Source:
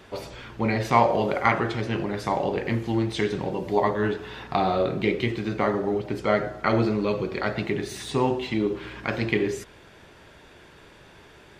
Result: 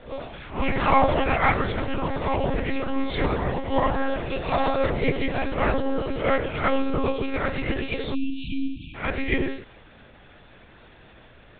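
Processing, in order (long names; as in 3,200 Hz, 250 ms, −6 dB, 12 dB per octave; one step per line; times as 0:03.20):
peak hold with a rise ahead of every peak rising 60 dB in 0.38 s
harmonic generator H 4 −25 dB, 8 −33 dB, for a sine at −3 dBFS
delay with pitch and tempo change per echo 81 ms, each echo +3 semitones, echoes 3, each echo −6 dB
one-pitch LPC vocoder at 8 kHz 270 Hz
time-frequency box erased 0:08.15–0:08.94, 340–2,300 Hz
level −1 dB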